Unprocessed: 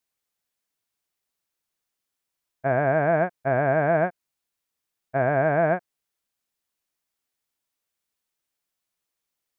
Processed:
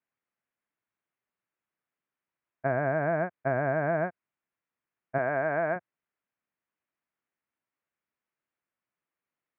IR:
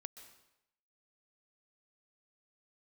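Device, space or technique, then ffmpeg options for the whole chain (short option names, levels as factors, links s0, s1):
bass amplifier: -filter_complex "[0:a]asettb=1/sr,asplit=3[s0][s1][s2];[s0]atrim=end=5.184[s3];[s1]atrim=start=5.18:end=5.76,asetpts=PTS-STARTPTS,afade=t=in:d=0.004:c=qsin,afade=t=out:st=0.576:d=0.004:c=qsin,aemphasis=mode=production:type=bsi[s4];[s2]atrim=start=5.756[s5];[s3][s4]acrossfade=d=0.004:c1=hsin:c2=qsin[s6];[s6][s5]acrossfade=d=0.004:c1=qsin:c2=hsin,acompressor=threshold=0.0708:ratio=4,highpass=78,equalizer=f=80:t=q:w=4:g=-8,equalizer=f=460:t=q:w=4:g=-3,equalizer=f=780:t=q:w=4:g=-3,lowpass=f=2300:w=0.5412,lowpass=f=2300:w=1.3066"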